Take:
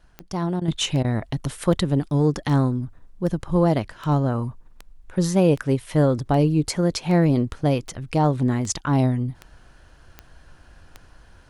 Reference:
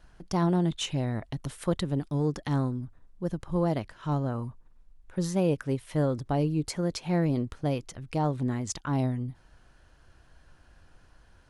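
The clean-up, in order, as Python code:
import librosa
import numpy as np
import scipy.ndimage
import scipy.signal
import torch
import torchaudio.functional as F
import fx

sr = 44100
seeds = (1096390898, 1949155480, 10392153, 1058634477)

y = fx.fix_declick_ar(x, sr, threshold=10.0)
y = fx.fix_interpolate(y, sr, at_s=(0.6, 1.03), length_ms=13.0)
y = fx.gain(y, sr, db=fx.steps((0.0, 0.0), (0.68, -8.0)))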